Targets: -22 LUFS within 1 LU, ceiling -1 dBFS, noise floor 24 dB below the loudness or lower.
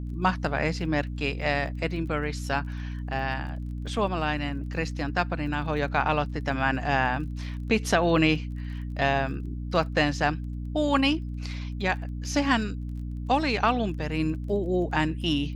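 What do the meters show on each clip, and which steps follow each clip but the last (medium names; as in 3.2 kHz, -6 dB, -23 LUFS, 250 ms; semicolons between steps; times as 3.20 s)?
tick rate 22 per s; hum 60 Hz; highest harmonic 300 Hz; hum level -31 dBFS; loudness -27.5 LUFS; peak level -8.5 dBFS; loudness target -22.0 LUFS
-> de-click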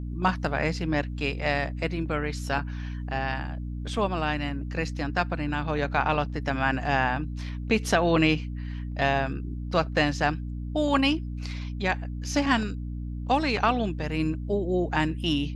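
tick rate 0 per s; hum 60 Hz; highest harmonic 300 Hz; hum level -31 dBFS
-> hum notches 60/120/180/240/300 Hz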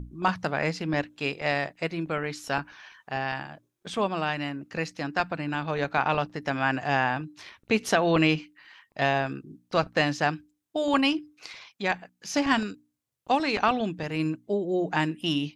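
hum not found; loudness -27.5 LUFS; peak level -8.5 dBFS; loudness target -22.0 LUFS
-> trim +5.5 dB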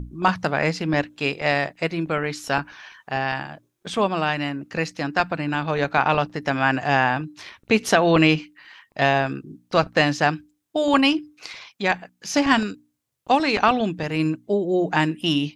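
loudness -22.0 LUFS; peak level -3.0 dBFS; noise floor -72 dBFS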